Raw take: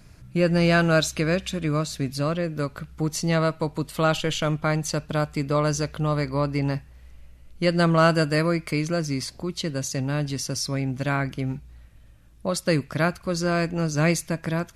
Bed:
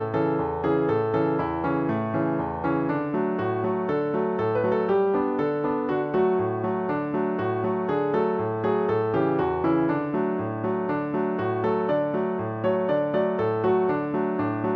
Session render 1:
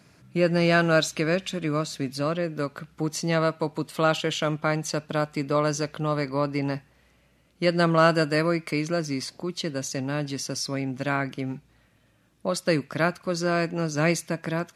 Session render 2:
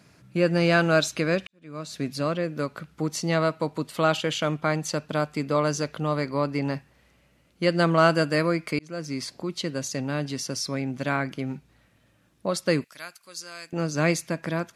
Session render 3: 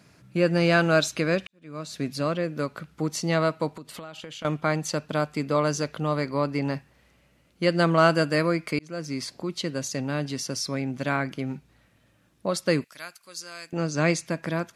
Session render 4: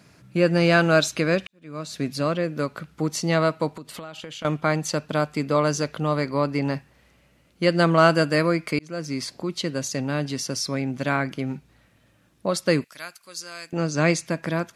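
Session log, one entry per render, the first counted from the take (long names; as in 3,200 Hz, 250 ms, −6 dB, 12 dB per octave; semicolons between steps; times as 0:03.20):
high-pass filter 180 Hz 12 dB per octave; high-shelf EQ 8,400 Hz −6.5 dB
0:01.47–0:02.01: fade in quadratic; 0:08.79–0:09.40: fade in equal-power; 0:12.84–0:13.73: first-order pre-emphasis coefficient 0.97
0:03.70–0:04.45: downward compressor 8 to 1, threshold −36 dBFS; 0:13.77–0:14.26: low-pass filter 9,300 Hz 24 dB per octave
level +2.5 dB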